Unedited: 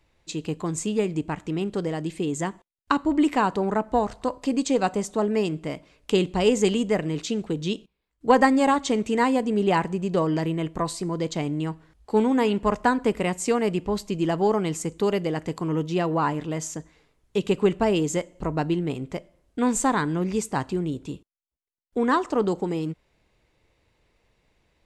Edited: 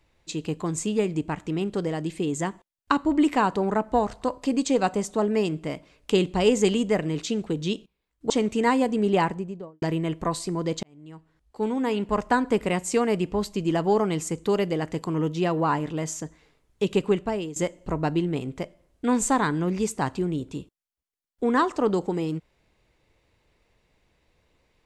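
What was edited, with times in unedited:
8.3–8.84 cut
9.66–10.36 studio fade out
11.37–13.03 fade in
17.5–18.1 fade out, to -14.5 dB

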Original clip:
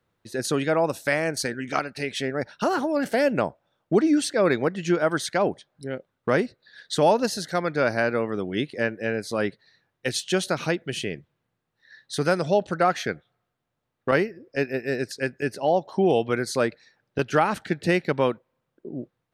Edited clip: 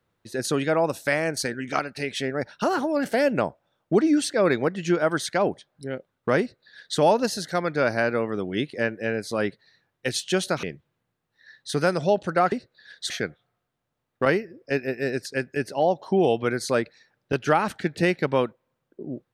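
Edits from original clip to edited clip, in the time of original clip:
6.4–6.98 copy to 12.96
10.63–11.07 cut

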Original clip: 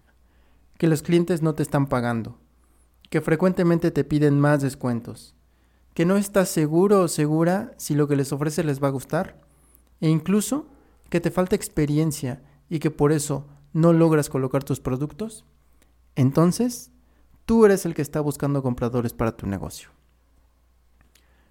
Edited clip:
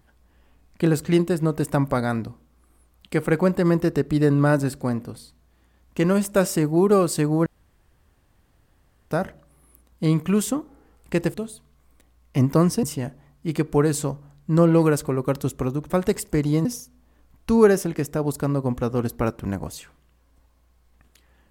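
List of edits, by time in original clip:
7.46–9.11 room tone
11.34–12.09 swap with 15.16–16.65

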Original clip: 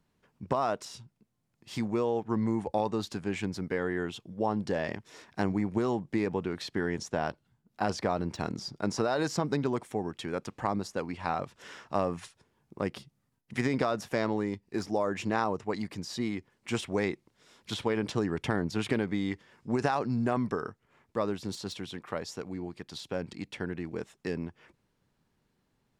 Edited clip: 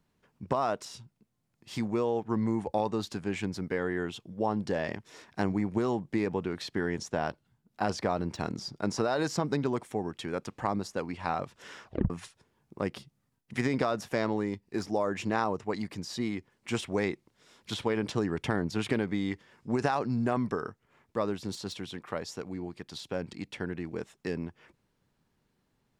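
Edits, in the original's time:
11.84 tape stop 0.26 s

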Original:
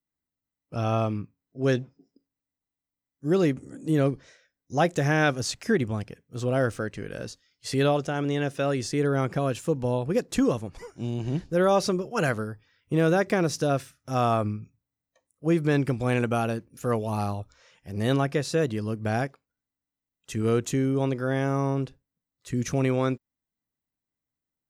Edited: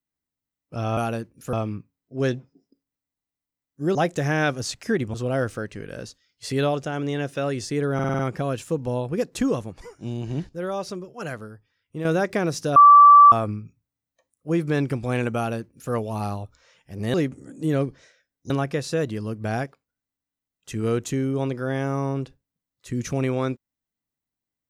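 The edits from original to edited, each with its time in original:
3.39–4.75 move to 18.11
5.94–6.36 cut
9.16 stutter 0.05 s, 6 plays
11.46–13.02 gain -7.5 dB
13.73–14.29 bleep 1160 Hz -6.5 dBFS
16.33–16.89 copy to 0.97

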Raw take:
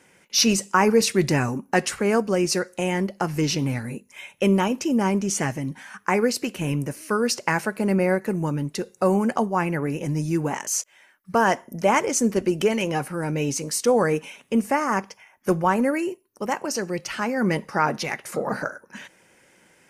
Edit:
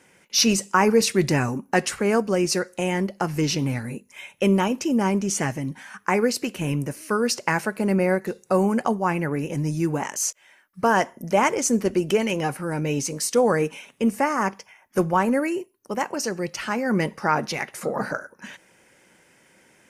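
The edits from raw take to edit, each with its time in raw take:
8.27–8.78 cut

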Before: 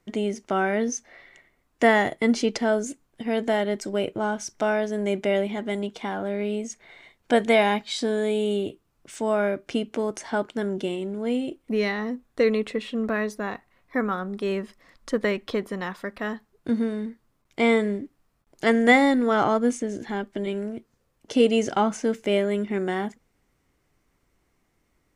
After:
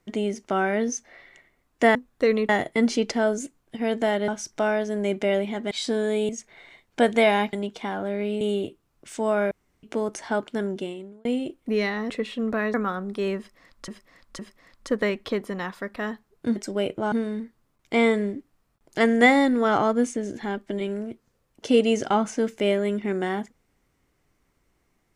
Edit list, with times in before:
3.74–4.3 move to 16.78
5.73–6.61 swap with 7.85–8.43
9.53–9.85 room tone
10.66–11.27 fade out
12.12–12.66 move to 1.95
13.3–13.98 cut
14.61–15.12 loop, 3 plays

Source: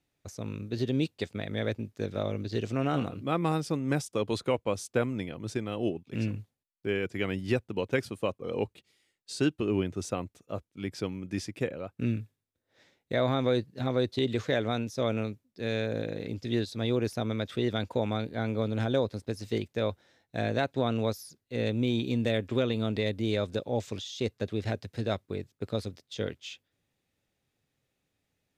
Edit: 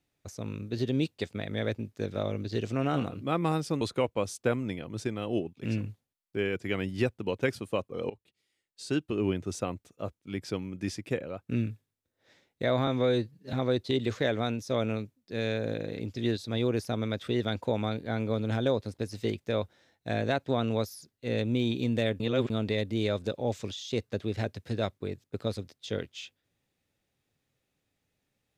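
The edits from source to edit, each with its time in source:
3.81–4.31 cut
8.6–9.81 fade in, from -19.5 dB
13.37–13.81 stretch 1.5×
22.48–22.78 reverse

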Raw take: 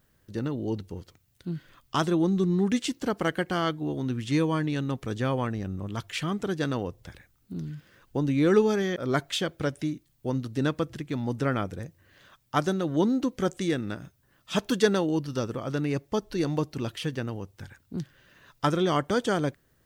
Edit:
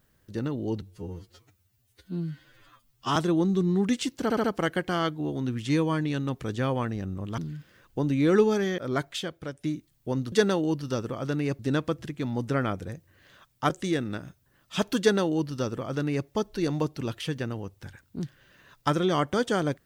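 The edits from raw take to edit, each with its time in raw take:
0.82–1.99 stretch 2×
3.06 stutter 0.07 s, 4 plays
6–7.56 cut
8.86–9.82 fade out, to -11 dB
12.61–13.47 cut
14.77–16.04 copy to 10.5

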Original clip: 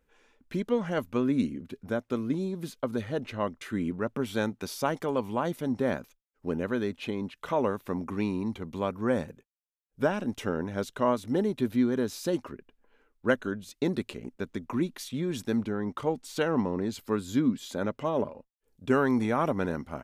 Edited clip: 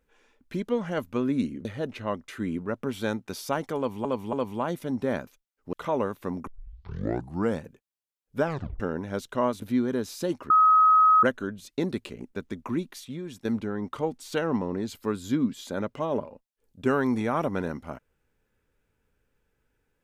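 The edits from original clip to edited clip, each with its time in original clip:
1.65–2.98 cut
5.1–5.38 loop, 3 plays
6.5–7.37 cut
8.11 tape start 1.11 s
10.08 tape stop 0.36 s
11.26–11.66 cut
12.54–13.27 bleep 1270 Hz -14.5 dBFS
14.74–15.49 fade out, to -10.5 dB

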